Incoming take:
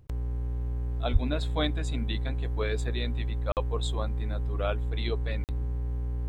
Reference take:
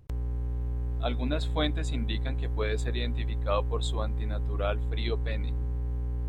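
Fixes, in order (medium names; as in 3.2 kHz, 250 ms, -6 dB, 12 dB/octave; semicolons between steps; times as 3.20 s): 1.12–1.24 s: high-pass 140 Hz 24 dB/octave; interpolate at 3.52/5.44 s, 48 ms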